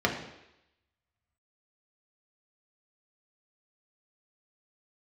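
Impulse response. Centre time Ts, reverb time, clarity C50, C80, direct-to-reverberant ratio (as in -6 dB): 26 ms, 0.85 s, 7.0 dB, 9.5 dB, -1.0 dB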